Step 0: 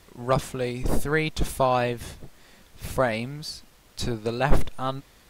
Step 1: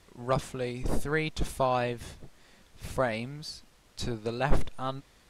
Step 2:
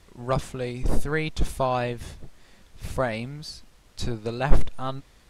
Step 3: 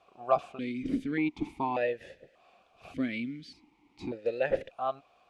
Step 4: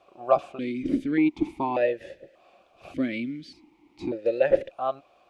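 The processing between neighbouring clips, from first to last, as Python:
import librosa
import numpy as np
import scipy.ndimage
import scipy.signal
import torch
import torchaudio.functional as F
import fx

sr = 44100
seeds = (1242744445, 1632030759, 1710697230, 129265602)

y1 = scipy.signal.sosfilt(scipy.signal.butter(2, 11000.0, 'lowpass', fs=sr, output='sos'), x)
y1 = F.gain(torch.from_numpy(y1), -5.0).numpy()
y2 = fx.low_shelf(y1, sr, hz=95.0, db=7.0)
y2 = F.gain(torch.from_numpy(y2), 2.0).numpy()
y3 = fx.vowel_held(y2, sr, hz=1.7)
y3 = F.gain(torch.from_numpy(y3), 8.0).numpy()
y4 = fx.small_body(y3, sr, hz=(340.0, 560.0), ring_ms=45, db=9)
y4 = F.gain(torch.from_numpy(y4), 2.5).numpy()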